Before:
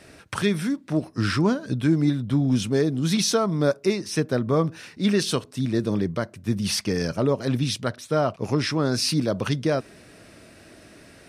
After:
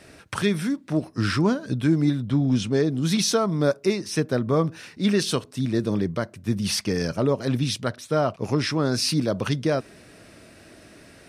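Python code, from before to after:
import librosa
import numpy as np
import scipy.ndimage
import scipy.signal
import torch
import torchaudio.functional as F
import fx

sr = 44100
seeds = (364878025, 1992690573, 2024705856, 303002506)

y = fx.lowpass(x, sr, hz=7100.0, slope=12, at=(2.3, 2.91))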